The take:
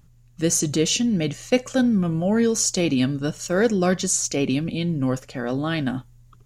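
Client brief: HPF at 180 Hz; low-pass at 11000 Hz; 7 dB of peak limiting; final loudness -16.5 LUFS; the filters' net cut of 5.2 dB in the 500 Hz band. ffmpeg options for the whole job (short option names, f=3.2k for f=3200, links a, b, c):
-af "highpass=180,lowpass=11k,equalizer=f=500:t=o:g=-6,volume=10dB,alimiter=limit=-6.5dB:level=0:latency=1"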